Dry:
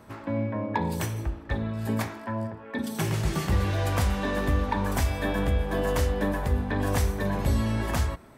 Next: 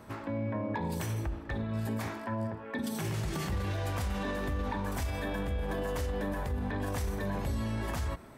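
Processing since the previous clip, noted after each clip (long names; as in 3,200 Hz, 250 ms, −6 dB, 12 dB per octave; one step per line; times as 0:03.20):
brickwall limiter −26 dBFS, peak gain reduction 10 dB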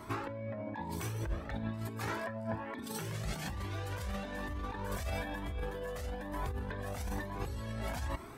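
low-shelf EQ 120 Hz −6 dB
compressor whose output falls as the input rises −38 dBFS, ratio −0.5
flanger whose copies keep moving one way rising 1.1 Hz
level +5 dB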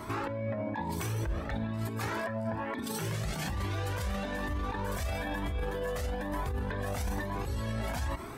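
brickwall limiter −31.5 dBFS, peak gain reduction 8 dB
level +6.5 dB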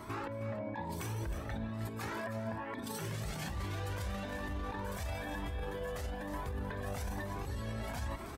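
reversed playback
upward compression, threshold −36 dBFS
reversed playback
single-tap delay 314 ms −10.5 dB
level −5.5 dB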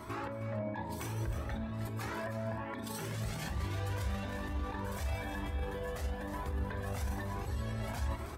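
convolution reverb RT60 0.85 s, pre-delay 7 ms, DRR 9.5 dB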